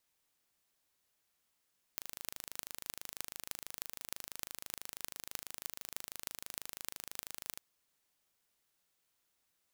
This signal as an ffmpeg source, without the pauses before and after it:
ffmpeg -f lavfi -i "aevalsrc='0.316*eq(mod(n,1690),0)*(0.5+0.5*eq(mod(n,13520),0))':duration=5.6:sample_rate=44100" out.wav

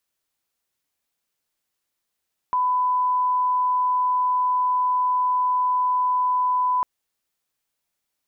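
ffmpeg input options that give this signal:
ffmpeg -f lavfi -i "sine=frequency=1000:duration=4.3:sample_rate=44100,volume=0.06dB" out.wav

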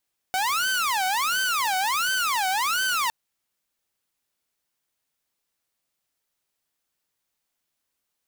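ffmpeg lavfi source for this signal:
ffmpeg -f lavfi -i "aevalsrc='0.106*(2*mod((1142.5*t-397.5/(2*PI*1.4)*sin(2*PI*1.4*t)),1)-1)':duration=2.76:sample_rate=44100" out.wav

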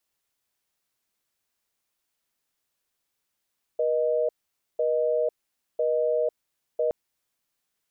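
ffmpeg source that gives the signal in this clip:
ffmpeg -f lavfi -i "aevalsrc='0.0631*(sin(2*PI*480*t)+sin(2*PI*620*t))*clip(min(mod(t,1),0.5-mod(t,1))/0.005,0,1)':duration=3.12:sample_rate=44100" out.wav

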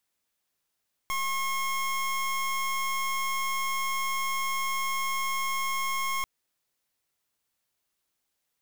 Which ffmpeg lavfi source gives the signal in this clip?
ffmpeg -f lavfi -i "aevalsrc='0.0355*(2*lt(mod(1080*t,1),0.25)-1)':duration=5.14:sample_rate=44100" out.wav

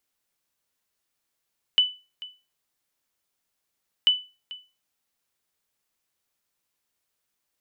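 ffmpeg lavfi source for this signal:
ffmpeg -f lavfi -i "aevalsrc='0.282*(sin(2*PI*2990*mod(t,2.29))*exp(-6.91*mod(t,2.29)/0.3)+0.106*sin(2*PI*2990*max(mod(t,2.29)-0.44,0))*exp(-6.91*max(mod(t,2.29)-0.44,0)/0.3))':duration=4.58:sample_rate=44100" out.wav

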